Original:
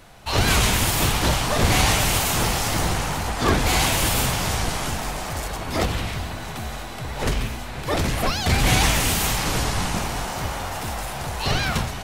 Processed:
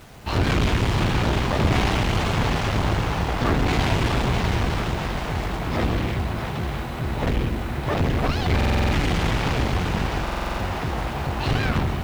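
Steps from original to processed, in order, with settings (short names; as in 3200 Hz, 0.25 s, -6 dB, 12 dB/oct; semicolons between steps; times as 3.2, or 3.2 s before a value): LPF 3200 Hz 12 dB/oct; bell 100 Hz +6.5 dB 2.7 oct; in parallel at -6 dB: wavefolder -16 dBFS; on the sum: AM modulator 280 Hz, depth 55%; one-sided clip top -25.5 dBFS; bit-crush 8-bit; on a send: split-band echo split 580 Hz, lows 0.133 s, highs 0.654 s, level -7 dB; on the sum: stuck buffer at 8.56/10.23, samples 2048, times 7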